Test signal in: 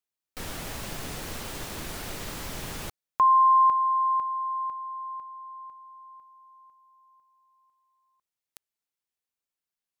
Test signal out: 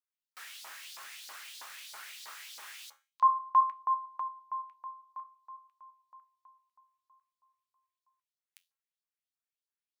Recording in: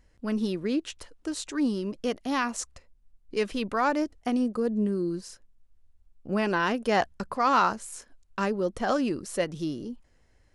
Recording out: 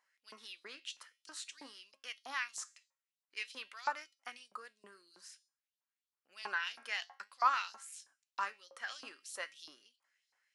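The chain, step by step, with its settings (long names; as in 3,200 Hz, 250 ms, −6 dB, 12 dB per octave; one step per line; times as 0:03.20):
flanger 0.51 Hz, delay 4.7 ms, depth 8.4 ms, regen +76%
tuned comb filter 270 Hz, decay 0.42 s, harmonics all, mix 50%
auto-filter high-pass saw up 3.1 Hz 900–4,700 Hz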